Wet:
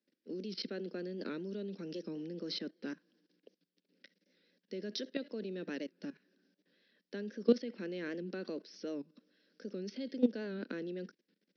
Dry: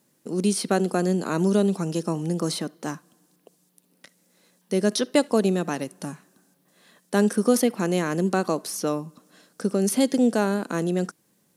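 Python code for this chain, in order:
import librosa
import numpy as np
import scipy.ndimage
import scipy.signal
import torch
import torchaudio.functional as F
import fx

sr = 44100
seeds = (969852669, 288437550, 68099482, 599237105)

y = scipy.signal.sosfilt(scipy.signal.butter(16, 5500.0, 'lowpass', fs=sr, output='sos'), x)
y = fx.band_shelf(y, sr, hz=920.0, db=-15.5, octaves=1.1)
y = fx.level_steps(y, sr, step_db=17)
y = scipy.signal.sosfilt(scipy.signal.butter(6, 200.0, 'highpass', fs=sr, output='sos'), y)
y = fx.record_warp(y, sr, rpm=78.0, depth_cents=100.0)
y = F.gain(torch.from_numpy(y), -4.5).numpy()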